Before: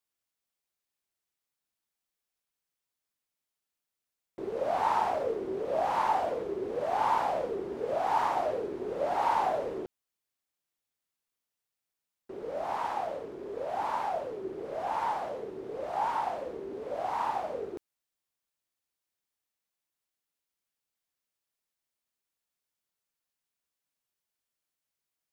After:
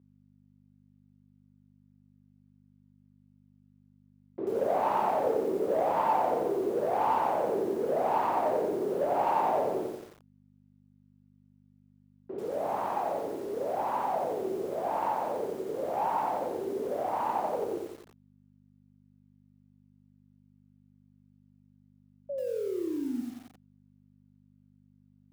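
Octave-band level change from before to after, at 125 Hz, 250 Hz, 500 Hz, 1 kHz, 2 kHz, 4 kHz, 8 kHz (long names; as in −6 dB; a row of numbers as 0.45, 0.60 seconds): +3.5 dB, +7.0 dB, +4.0 dB, +1.0 dB, −2.0 dB, −3.5 dB, can't be measured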